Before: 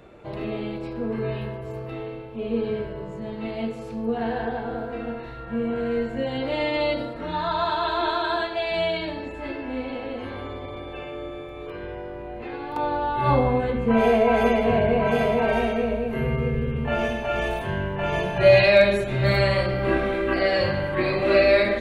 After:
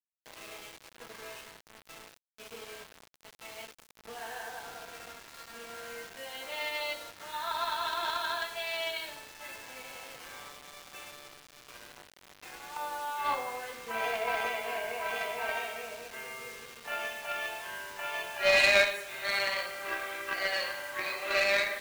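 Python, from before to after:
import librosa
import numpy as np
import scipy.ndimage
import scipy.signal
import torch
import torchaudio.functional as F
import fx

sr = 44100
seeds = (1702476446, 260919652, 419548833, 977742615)

y = scipy.signal.sosfilt(scipy.signal.butter(2, 1100.0, 'highpass', fs=sr, output='sos'), x)
y = fx.cheby_harmonics(y, sr, harmonics=(2, 3, 5, 7), levels_db=(-17, -17, -35, -28), full_scale_db=-9.0)
y = fx.quant_dither(y, sr, seeds[0], bits=8, dither='none')
y = y * 10.0 ** (2.5 / 20.0)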